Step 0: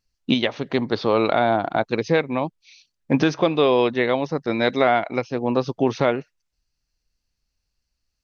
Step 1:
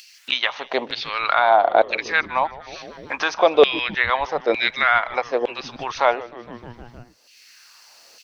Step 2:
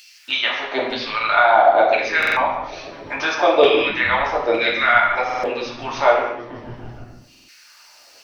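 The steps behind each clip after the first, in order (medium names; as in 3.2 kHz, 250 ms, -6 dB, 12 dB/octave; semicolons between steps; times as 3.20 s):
LFO high-pass saw down 1.1 Hz 460–2900 Hz; frequency-shifting echo 154 ms, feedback 62%, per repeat -120 Hz, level -19 dB; upward compressor, threshold -27 dBFS; trim +2 dB
reverberation, pre-delay 3 ms, DRR -5.5 dB; buffer glitch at 2.18/5.25/7.30 s, samples 2048, times 3; trim -4 dB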